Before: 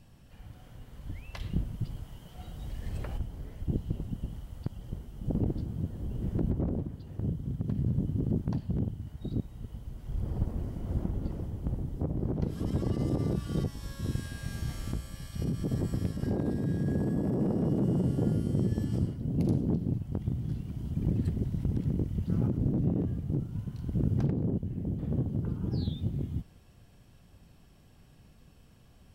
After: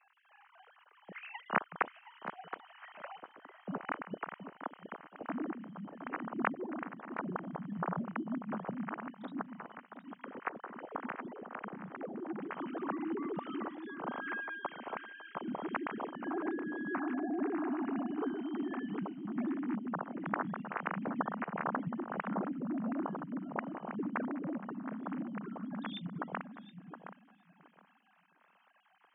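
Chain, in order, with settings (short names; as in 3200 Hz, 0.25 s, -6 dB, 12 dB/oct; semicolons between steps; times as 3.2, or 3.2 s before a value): sine-wave speech; band-pass 1300 Hz, Q 1.2; on a send: tape echo 0.72 s, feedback 23%, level -7.5 dB, low-pass 1300 Hz; on the sum: gain +5.5 dB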